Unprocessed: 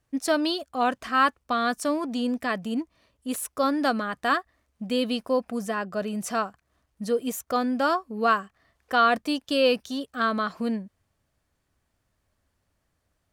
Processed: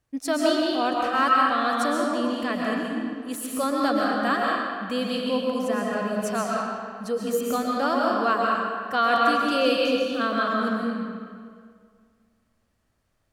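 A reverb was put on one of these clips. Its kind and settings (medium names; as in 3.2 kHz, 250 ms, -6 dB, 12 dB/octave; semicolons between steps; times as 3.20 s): algorithmic reverb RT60 2 s, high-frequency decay 0.75×, pre-delay 90 ms, DRR -3 dB; trim -2.5 dB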